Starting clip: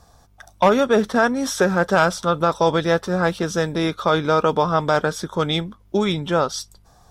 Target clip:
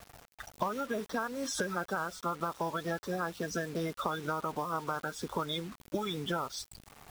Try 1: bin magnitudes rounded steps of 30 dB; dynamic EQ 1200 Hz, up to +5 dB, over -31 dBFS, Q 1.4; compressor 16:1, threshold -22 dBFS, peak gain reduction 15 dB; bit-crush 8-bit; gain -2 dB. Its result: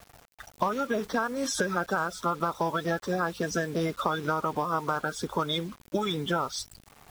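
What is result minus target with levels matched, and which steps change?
compressor: peak gain reduction -6 dB
change: compressor 16:1, threshold -28.5 dBFS, peak gain reduction 21 dB

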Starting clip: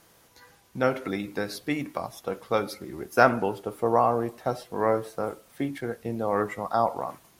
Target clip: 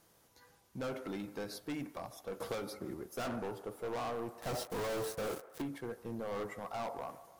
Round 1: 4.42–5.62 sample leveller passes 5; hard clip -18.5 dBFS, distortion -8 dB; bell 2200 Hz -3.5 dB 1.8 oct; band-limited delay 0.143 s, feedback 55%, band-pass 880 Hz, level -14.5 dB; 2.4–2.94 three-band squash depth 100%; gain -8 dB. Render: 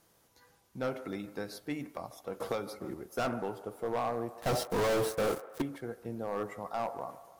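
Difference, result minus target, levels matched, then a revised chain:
hard clip: distortion -6 dB
4.42–5.62 sample leveller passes 5; hard clip -27 dBFS, distortion -2 dB; bell 2200 Hz -3.5 dB 1.8 oct; band-limited delay 0.143 s, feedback 55%, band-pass 880 Hz, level -14.5 dB; 2.4–2.94 three-band squash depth 100%; gain -8 dB

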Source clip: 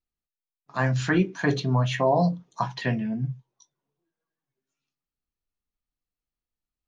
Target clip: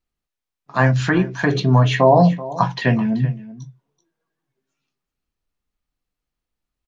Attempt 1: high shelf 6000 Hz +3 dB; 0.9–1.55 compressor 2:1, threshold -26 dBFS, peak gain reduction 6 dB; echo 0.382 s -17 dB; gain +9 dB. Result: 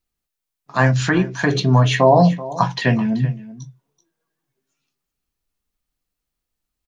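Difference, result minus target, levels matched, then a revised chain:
8000 Hz band +6.0 dB
high shelf 6000 Hz -8.5 dB; 0.9–1.55 compressor 2:1, threshold -26 dBFS, peak gain reduction 6 dB; echo 0.382 s -17 dB; gain +9 dB

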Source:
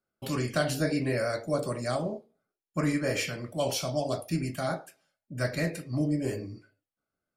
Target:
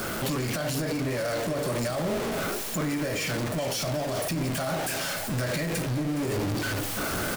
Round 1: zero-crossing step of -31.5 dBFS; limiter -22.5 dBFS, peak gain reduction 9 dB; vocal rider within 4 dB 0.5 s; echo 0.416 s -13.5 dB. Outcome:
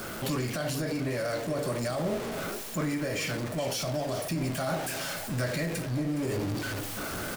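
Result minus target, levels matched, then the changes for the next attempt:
zero-crossing step: distortion -5 dB
change: zero-crossing step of -25 dBFS

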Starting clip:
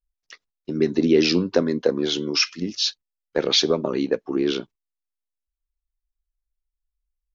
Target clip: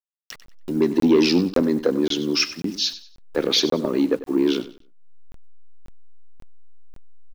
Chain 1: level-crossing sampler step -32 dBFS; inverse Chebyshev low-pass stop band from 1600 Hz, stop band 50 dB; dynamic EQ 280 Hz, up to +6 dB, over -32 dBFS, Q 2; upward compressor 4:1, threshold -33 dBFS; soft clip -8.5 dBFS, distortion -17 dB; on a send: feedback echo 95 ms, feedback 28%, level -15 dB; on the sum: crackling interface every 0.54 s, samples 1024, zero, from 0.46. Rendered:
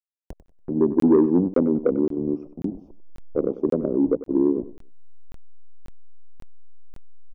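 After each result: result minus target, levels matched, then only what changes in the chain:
2000 Hz band -16.5 dB; level-crossing sampler: distortion +11 dB
remove: inverse Chebyshev low-pass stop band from 1600 Hz, stop band 50 dB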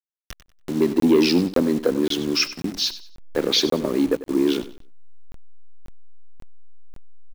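level-crossing sampler: distortion +11 dB
change: level-crossing sampler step -43 dBFS

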